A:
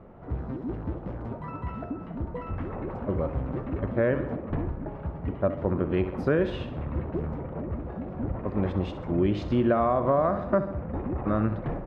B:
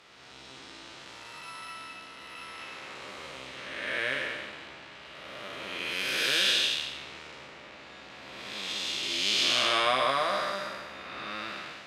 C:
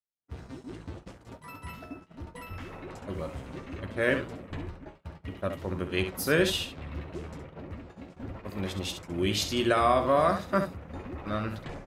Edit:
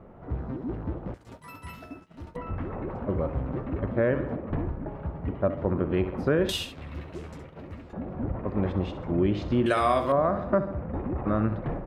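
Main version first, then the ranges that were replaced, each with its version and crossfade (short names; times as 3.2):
A
1.14–2.36 from C
6.49–7.93 from C
9.66–10.12 from C
not used: B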